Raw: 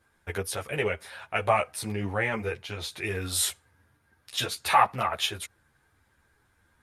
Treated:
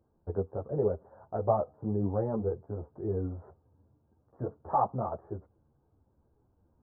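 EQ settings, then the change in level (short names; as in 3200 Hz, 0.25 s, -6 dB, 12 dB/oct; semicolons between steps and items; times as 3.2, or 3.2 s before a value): Gaussian blur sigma 12 samples; low shelf 130 Hz -5 dB; +4.0 dB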